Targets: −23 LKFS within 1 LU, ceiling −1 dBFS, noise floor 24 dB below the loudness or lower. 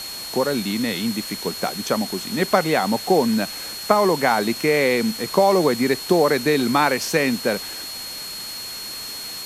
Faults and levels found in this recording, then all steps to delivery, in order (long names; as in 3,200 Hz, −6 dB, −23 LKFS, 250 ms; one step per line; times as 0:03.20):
interfering tone 4,300 Hz; level of the tone −32 dBFS; background noise floor −33 dBFS; target noise floor −45 dBFS; integrated loudness −21.0 LKFS; sample peak −1.5 dBFS; target loudness −23.0 LKFS
→ notch filter 4,300 Hz, Q 30
broadband denoise 12 dB, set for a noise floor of −33 dBFS
level −2 dB